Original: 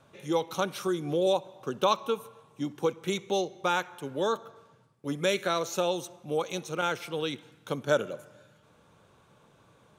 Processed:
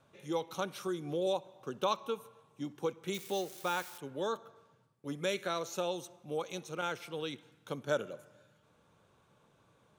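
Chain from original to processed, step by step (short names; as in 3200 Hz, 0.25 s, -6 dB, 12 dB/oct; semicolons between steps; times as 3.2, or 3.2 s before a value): 3.14–3.98 switching spikes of -30.5 dBFS; gain -7 dB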